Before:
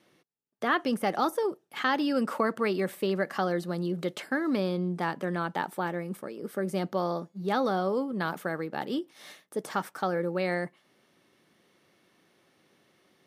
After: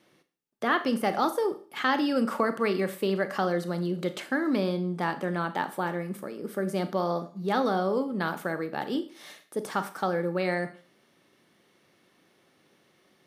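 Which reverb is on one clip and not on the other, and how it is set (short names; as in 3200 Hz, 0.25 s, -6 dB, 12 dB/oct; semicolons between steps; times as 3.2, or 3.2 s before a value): Schroeder reverb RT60 0.41 s, combs from 27 ms, DRR 10 dB; gain +1 dB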